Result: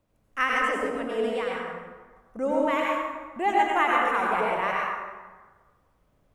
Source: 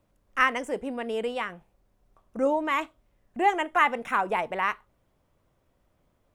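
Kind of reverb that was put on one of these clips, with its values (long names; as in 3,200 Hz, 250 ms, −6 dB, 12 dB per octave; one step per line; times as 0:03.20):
dense smooth reverb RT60 1.4 s, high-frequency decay 0.6×, pre-delay 75 ms, DRR −3.5 dB
level −3.5 dB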